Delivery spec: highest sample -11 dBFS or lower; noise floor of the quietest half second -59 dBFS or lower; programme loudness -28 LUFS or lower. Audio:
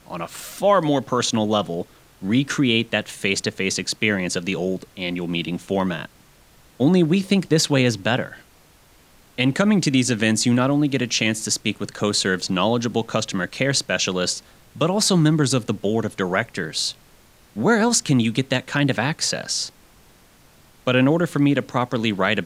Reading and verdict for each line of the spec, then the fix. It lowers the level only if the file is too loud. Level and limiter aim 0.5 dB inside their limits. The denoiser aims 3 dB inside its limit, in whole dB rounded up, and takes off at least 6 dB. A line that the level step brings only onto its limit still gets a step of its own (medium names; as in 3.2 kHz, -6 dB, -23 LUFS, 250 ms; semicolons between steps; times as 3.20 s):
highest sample -4.5 dBFS: fail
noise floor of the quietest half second -53 dBFS: fail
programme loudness -21.0 LUFS: fail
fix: trim -7.5 dB